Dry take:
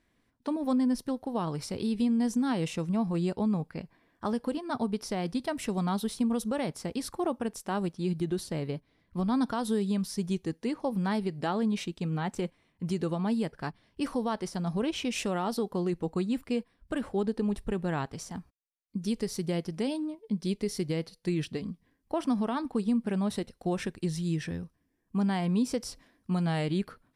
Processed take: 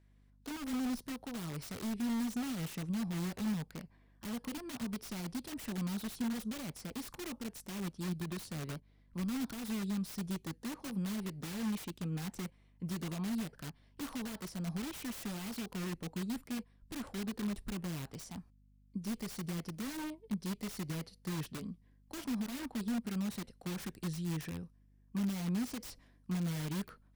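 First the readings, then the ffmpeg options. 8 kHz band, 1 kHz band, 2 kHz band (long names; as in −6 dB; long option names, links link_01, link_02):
−3.5 dB, −13.0 dB, −6.0 dB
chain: -filter_complex "[0:a]acrossover=split=310[link_01][link_02];[link_02]aeval=exprs='(mod(59.6*val(0)+1,2)-1)/59.6':channel_layout=same[link_03];[link_01][link_03]amix=inputs=2:normalize=0,aeval=exprs='val(0)+0.00126*(sin(2*PI*50*n/s)+sin(2*PI*2*50*n/s)/2+sin(2*PI*3*50*n/s)/3+sin(2*PI*4*50*n/s)/4+sin(2*PI*5*50*n/s)/5)':channel_layout=same,volume=-6dB"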